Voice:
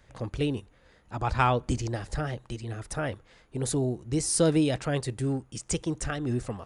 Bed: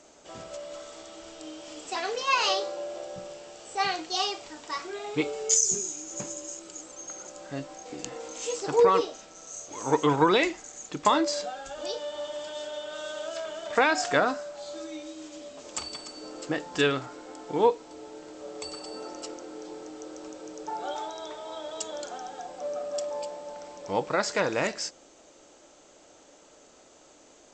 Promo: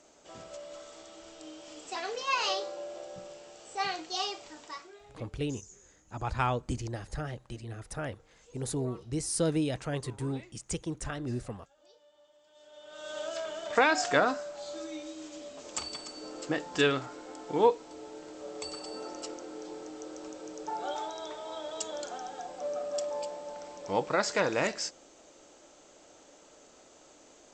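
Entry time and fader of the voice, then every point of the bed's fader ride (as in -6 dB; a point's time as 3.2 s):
5.00 s, -5.5 dB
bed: 4.62 s -5 dB
5.3 s -27.5 dB
12.43 s -27.5 dB
13.18 s -1.5 dB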